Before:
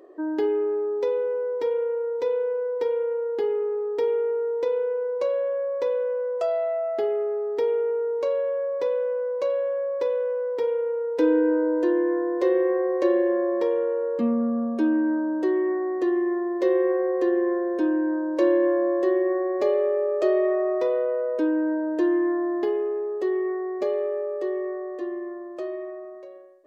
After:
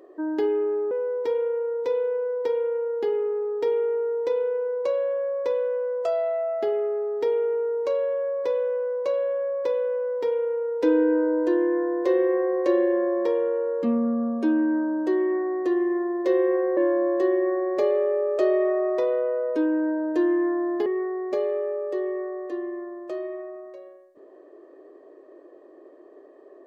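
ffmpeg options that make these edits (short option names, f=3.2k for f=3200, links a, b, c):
-filter_complex "[0:a]asplit=4[a][b][c][d];[a]atrim=end=0.912[e];[b]atrim=start=1.268:end=17.132[f];[c]atrim=start=18.598:end=22.692[g];[d]atrim=start=23.348[h];[e][f]acrossfade=d=0.004:c1=hsin:c2=hsin[i];[i][g]acrossfade=d=0.004:c1=hsin:c2=hsin[j];[j][h]acrossfade=d=0.004:c1=hsin:c2=hsin"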